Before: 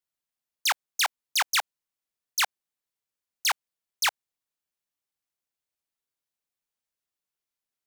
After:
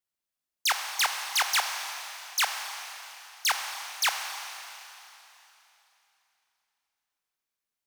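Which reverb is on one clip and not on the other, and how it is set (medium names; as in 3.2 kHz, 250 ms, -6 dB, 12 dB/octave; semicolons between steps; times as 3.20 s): Schroeder reverb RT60 3.2 s, combs from 29 ms, DRR 4.5 dB; trim -1 dB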